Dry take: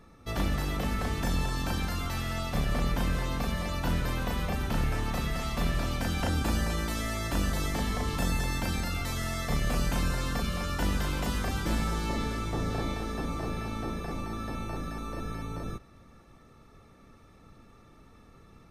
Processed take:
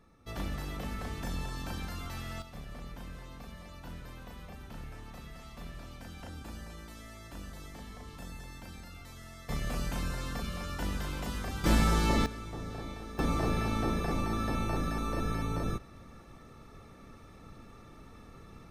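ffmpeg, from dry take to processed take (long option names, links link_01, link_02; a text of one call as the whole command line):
ffmpeg -i in.wav -af "asetnsamples=nb_out_samples=441:pad=0,asendcmd='2.42 volume volume -16dB;9.49 volume volume -6dB;11.64 volume volume 4dB;12.26 volume volume -9dB;13.19 volume volume 3.5dB',volume=-7.5dB" out.wav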